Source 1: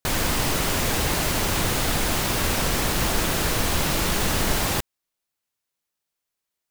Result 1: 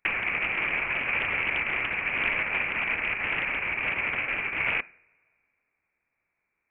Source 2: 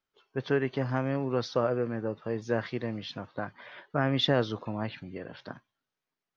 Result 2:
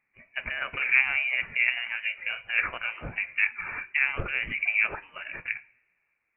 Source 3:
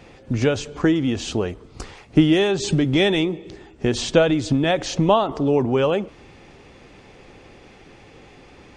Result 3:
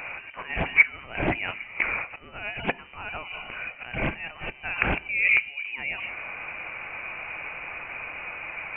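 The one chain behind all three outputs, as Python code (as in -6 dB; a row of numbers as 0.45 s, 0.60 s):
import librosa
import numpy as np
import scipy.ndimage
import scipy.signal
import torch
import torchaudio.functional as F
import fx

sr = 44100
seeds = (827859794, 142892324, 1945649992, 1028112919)

y = fx.over_compress(x, sr, threshold_db=-29.0, ratio=-1.0)
y = fx.ladder_highpass(y, sr, hz=870.0, resonance_pct=70)
y = fx.rev_double_slope(y, sr, seeds[0], early_s=0.49, late_s=2.1, knee_db=-20, drr_db=17.0)
y = fx.freq_invert(y, sr, carrier_hz=3300)
y = fx.doppler_dist(y, sr, depth_ms=0.27)
y = y * 10.0 ** (-30 / 20.0) / np.sqrt(np.mean(np.square(y)))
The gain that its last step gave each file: +12.0 dB, +18.0 dB, +14.5 dB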